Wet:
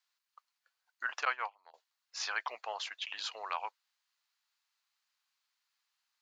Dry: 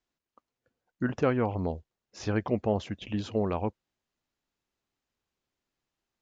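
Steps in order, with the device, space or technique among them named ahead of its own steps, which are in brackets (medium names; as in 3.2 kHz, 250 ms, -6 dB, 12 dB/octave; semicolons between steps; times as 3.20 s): 1.25–1.74 s: gate -25 dBFS, range -23 dB; headphones lying on a table (high-pass 1 kHz 24 dB/octave; peaking EQ 4.4 kHz +6 dB 0.37 oct); trim +4 dB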